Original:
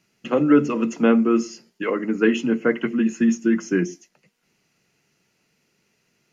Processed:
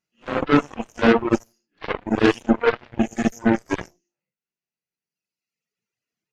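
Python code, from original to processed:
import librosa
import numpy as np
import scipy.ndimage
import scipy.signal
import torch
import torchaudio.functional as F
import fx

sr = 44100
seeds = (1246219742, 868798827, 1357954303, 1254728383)

y = fx.phase_scramble(x, sr, seeds[0], window_ms=200)
y = fx.hum_notches(y, sr, base_hz=50, count=8)
y = fx.cheby_harmonics(y, sr, harmonics=(4, 7), levels_db=(-17, -16), full_scale_db=-6.5)
y = fx.dereverb_blind(y, sr, rt60_s=1.7)
y = F.gain(torch.from_numpy(y), 2.5).numpy()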